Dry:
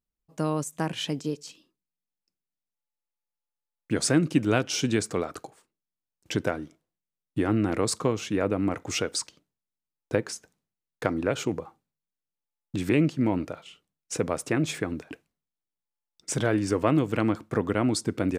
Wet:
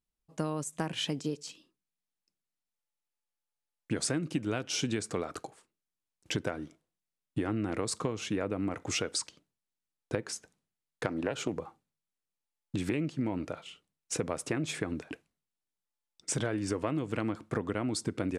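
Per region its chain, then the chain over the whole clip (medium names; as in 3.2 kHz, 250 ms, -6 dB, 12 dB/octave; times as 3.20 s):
11.07–11.56 s: high-pass 110 Hz + loudspeaker Doppler distortion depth 0.19 ms
whole clip: Chebyshev low-pass 12 kHz, order 8; compression, threshold -28 dBFS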